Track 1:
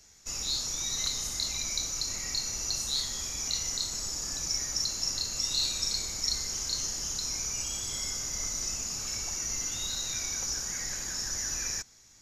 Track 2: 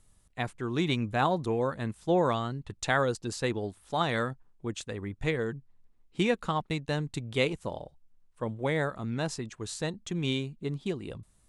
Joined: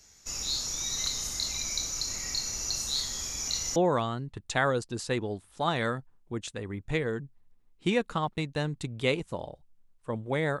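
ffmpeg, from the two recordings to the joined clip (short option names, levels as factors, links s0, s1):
-filter_complex "[0:a]apad=whole_dur=10.6,atrim=end=10.6,atrim=end=3.762[s0];[1:a]atrim=start=2.088:end=8.93[s1];[s0][s1]acrossfade=d=0.004:c1=hsin:c2=hsin"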